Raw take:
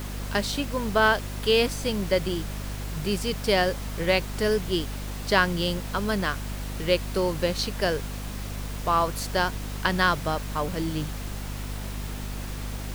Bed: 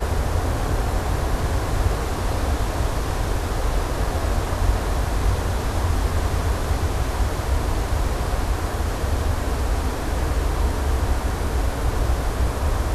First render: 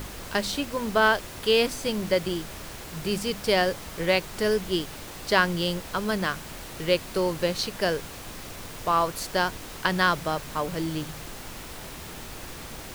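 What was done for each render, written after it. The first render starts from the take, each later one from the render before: de-hum 50 Hz, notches 5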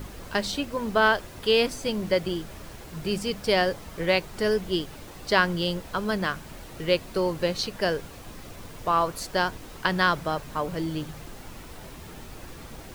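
denoiser 7 dB, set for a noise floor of -40 dBFS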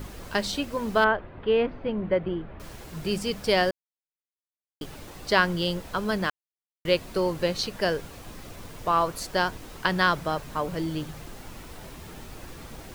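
1.04–2.6 Gaussian blur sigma 3.7 samples; 3.71–4.81 mute; 6.3–6.85 mute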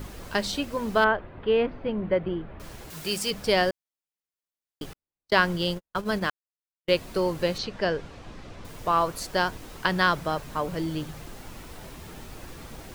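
2.9–3.31 tilt +2.5 dB/oct; 4.93–6.92 gate -30 dBFS, range -56 dB; 7.58–8.65 air absorption 110 m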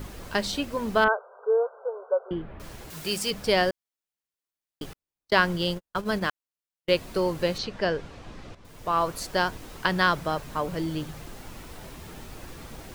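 1.08–2.31 brick-wall FIR band-pass 400–1600 Hz; 8.55–9.09 fade in, from -12 dB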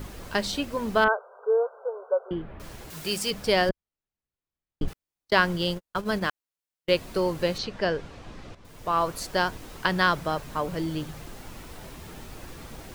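3.69–4.88 RIAA curve playback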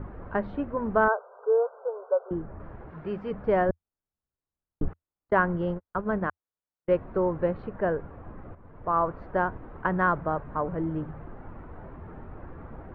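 LPF 1500 Hz 24 dB/oct; bell 84 Hz +4 dB 0.4 oct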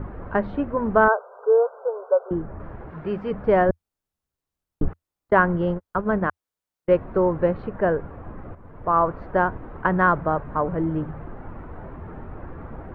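gain +5.5 dB

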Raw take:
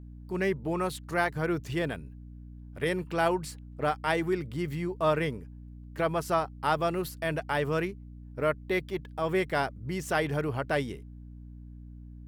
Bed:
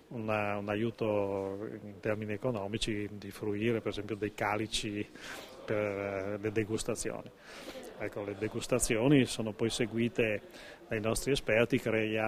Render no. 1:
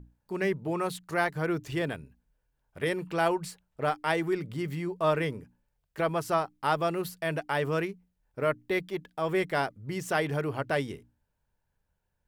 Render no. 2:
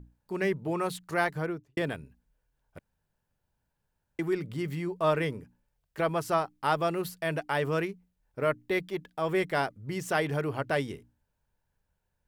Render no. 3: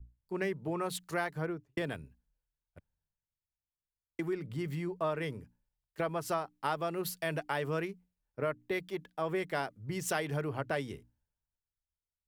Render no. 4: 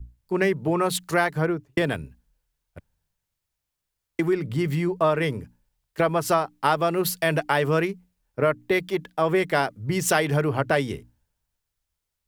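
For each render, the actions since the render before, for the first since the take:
notches 60/120/180/240/300 Hz
1.31–1.77 studio fade out; 2.79–4.19 room tone
compressor 5:1, threshold -31 dBFS, peak gain reduction 10.5 dB; three-band expander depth 70%
gain +12 dB

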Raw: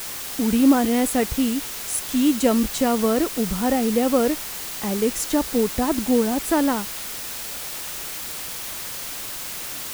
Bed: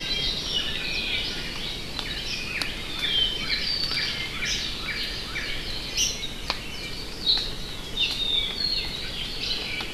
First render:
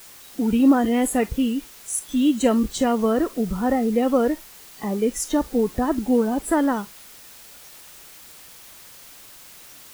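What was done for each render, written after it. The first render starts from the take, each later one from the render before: noise print and reduce 13 dB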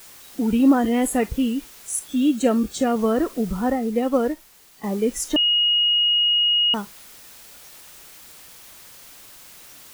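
2.08–2.96 notch comb 1000 Hz; 3.7–4.84 upward expander, over -29 dBFS; 5.36–6.74 bleep 2880 Hz -15.5 dBFS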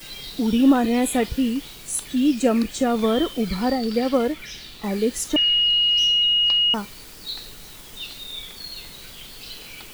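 add bed -10.5 dB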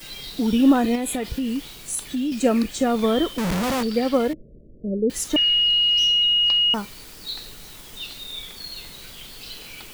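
0.95–2.32 compressor 10:1, threshold -21 dBFS; 3.38–3.83 Schmitt trigger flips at -32.5 dBFS; 4.33–5.1 steep low-pass 610 Hz 96 dB/oct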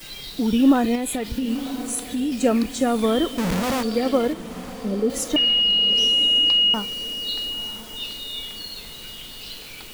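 diffused feedback echo 1.021 s, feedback 45%, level -12.5 dB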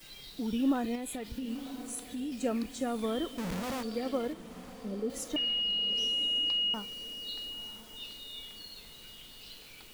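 gain -12.5 dB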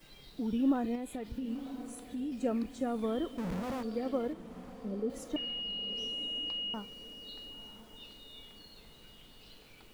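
high shelf 2000 Hz -11 dB

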